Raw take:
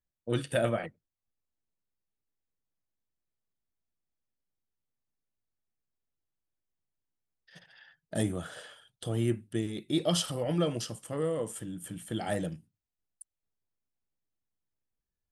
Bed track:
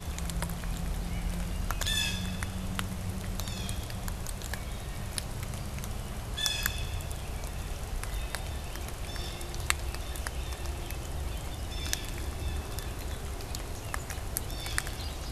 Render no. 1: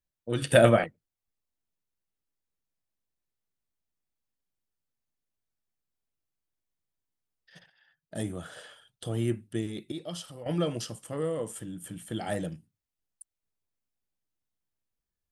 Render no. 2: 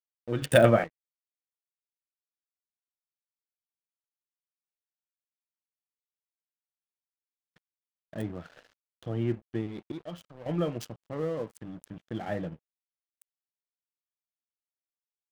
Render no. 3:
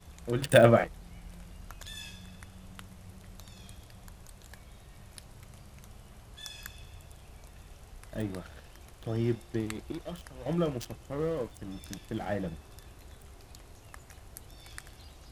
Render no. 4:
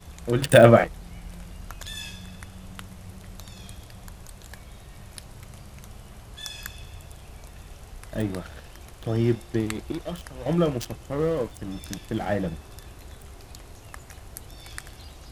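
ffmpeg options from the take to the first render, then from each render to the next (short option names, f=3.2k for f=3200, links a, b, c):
-filter_complex "[0:a]asplit=6[a][b][c][d][e][f];[a]atrim=end=0.422[g];[b]atrim=start=0.418:end=0.842,asetpts=PTS-STARTPTS,volume=9.5dB[h];[c]atrim=start=0.838:end=7.7,asetpts=PTS-STARTPTS,afade=t=out:st=6.858:d=0.004:c=hsin:silence=0.237137[i];[d]atrim=start=7.7:end=9.922,asetpts=PTS-STARTPTS,afade=t=in:d=0.97:silence=0.237137[j];[e]atrim=start=9.918:end=10.462,asetpts=PTS-STARTPTS,volume=-10.5dB[k];[f]atrim=start=10.458[l];[g][h]acrossfade=d=0.004:c1=hsin:c2=hsin[m];[i][j]concat=n=2:v=0:a=1[n];[m][n]acrossfade=d=0.004:c1=hsin:c2=hsin[o];[o][k]acrossfade=d=0.004:c1=hsin:c2=hsin[p];[p][l]acrossfade=d=0.004:c1=hsin:c2=hsin"
-filter_complex "[0:a]acrossover=split=3000[a][b];[a]aeval=exprs='sgn(val(0))*max(abs(val(0))-0.00376,0)':c=same[c];[b]acrusher=bits=4:mix=0:aa=0.5[d];[c][d]amix=inputs=2:normalize=0"
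-filter_complex "[1:a]volume=-14dB[a];[0:a][a]amix=inputs=2:normalize=0"
-af "volume=7dB,alimiter=limit=-1dB:level=0:latency=1"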